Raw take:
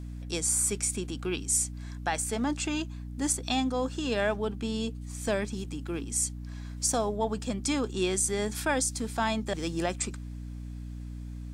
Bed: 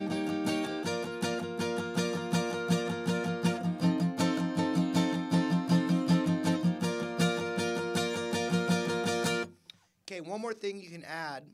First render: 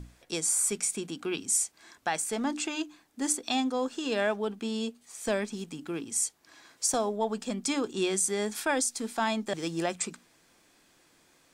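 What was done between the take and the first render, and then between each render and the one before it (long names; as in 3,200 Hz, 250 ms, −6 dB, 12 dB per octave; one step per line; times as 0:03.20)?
mains-hum notches 60/120/180/240/300 Hz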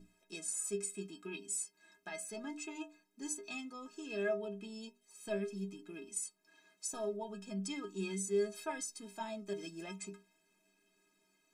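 stiff-string resonator 190 Hz, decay 0.34 s, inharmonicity 0.03
hollow resonant body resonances 300/2,500 Hz, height 16 dB, ringing for 75 ms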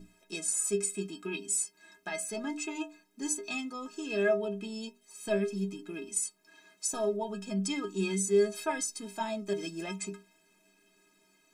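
level +8 dB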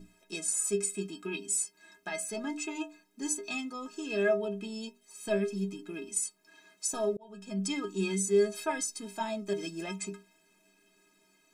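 0:07.17–0:07.67: fade in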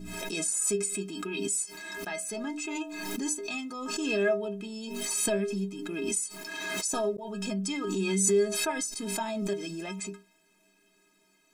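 background raised ahead of every attack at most 27 dB per second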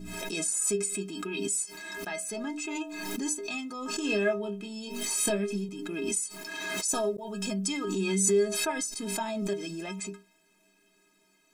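0:03.96–0:05.69: double-tracking delay 24 ms −7 dB
0:06.88–0:07.84: high-shelf EQ 5,600 Hz +6.5 dB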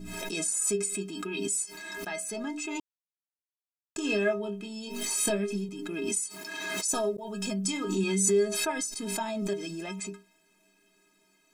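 0:02.80–0:03.96: silence
0:06.07–0:06.88: high-pass filter 87 Hz
0:07.62–0:08.04: double-tracking delay 26 ms −7 dB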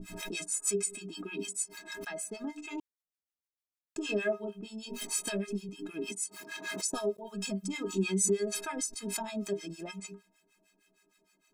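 two-band tremolo in antiphase 6.5 Hz, depth 100%, crossover 910 Hz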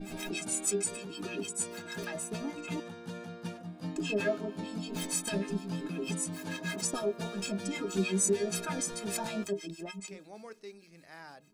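mix in bed −11.5 dB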